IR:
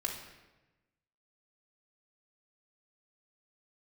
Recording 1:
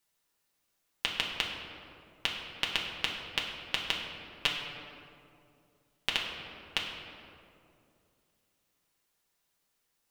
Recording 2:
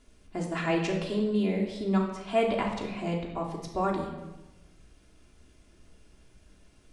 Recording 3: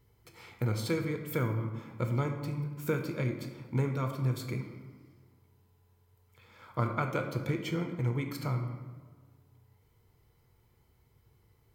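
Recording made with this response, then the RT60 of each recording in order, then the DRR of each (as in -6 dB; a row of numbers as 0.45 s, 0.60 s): 2; 2.5 s, 1.1 s, 1.6 s; -2.5 dB, -2.0 dB, 4.5 dB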